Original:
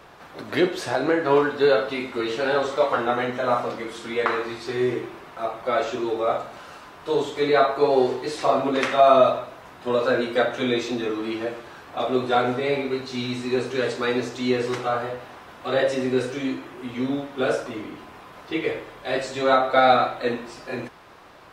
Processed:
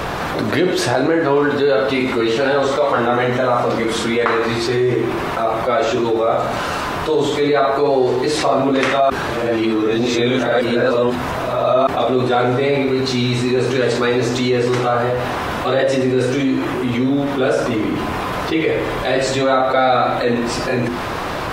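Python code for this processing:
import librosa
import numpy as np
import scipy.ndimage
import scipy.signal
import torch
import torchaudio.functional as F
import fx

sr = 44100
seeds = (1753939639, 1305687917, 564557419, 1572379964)

y = fx.edit(x, sr, fx.reverse_span(start_s=9.1, length_s=2.77), tone=tone)
y = fx.low_shelf(y, sr, hz=290.0, db=7.0)
y = fx.hum_notches(y, sr, base_hz=50, count=8)
y = fx.env_flatten(y, sr, amount_pct=70)
y = F.gain(torch.from_numpy(y), -2.0).numpy()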